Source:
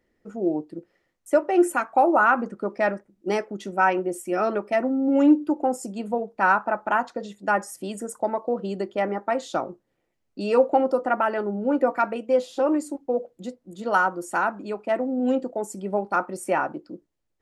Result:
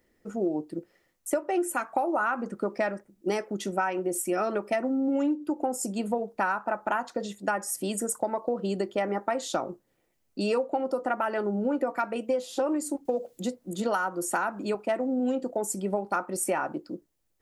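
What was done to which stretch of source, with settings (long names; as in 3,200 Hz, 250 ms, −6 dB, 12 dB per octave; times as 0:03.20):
0:13.05–0:14.75: multiband upward and downward compressor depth 40%
whole clip: high-shelf EQ 6,900 Hz +11.5 dB; downward compressor 10 to 1, threshold −25 dBFS; level +1.5 dB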